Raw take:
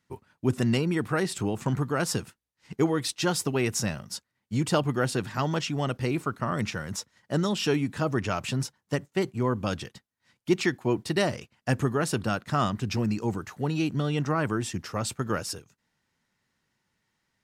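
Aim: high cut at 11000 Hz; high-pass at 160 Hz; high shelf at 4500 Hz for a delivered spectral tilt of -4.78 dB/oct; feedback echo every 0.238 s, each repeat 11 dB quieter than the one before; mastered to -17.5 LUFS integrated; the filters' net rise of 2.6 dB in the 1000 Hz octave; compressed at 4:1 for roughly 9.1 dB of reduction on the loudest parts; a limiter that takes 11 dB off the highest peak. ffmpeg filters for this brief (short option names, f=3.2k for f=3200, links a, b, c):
-af "highpass=160,lowpass=11k,equalizer=f=1k:t=o:g=4,highshelf=f=4.5k:g=-7.5,acompressor=threshold=-29dB:ratio=4,alimiter=level_in=3dB:limit=-24dB:level=0:latency=1,volume=-3dB,aecho=1:1:238|476|714:0.282|0.0789|0.0221,volume=20.5dB"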